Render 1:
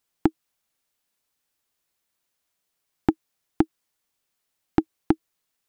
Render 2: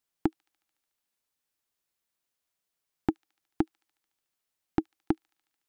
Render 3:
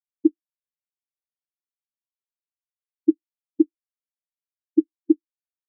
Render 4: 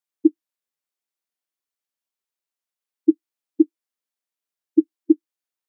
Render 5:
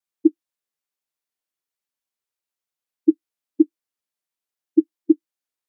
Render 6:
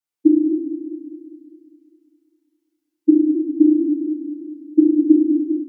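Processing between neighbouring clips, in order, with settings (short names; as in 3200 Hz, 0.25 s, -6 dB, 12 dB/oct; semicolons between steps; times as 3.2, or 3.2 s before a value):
thin delay 73 ms, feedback 75%, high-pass 3400 Hz, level -21 dB; gain -6.5 dB
on a send at -16 dB: reverb RT60 0.55 s, pre-delay 6 ms; on the sum: spectral expander 4:1; gain +6 dB
HPF 230 Hz; in parallel at -0.5 dB: limiter -14.5 dBFS, peak gain reduction 8 dB
vibrato 0.49 Hz 11 cents
FDN reverb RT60 1.3 s, low-frequency decay 0.95×, high-frequency decay 0.95×, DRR -7.5 dB; warbling echo 0.201 s, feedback 58%, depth 66 cents, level -7 dB; gain -6.5 dB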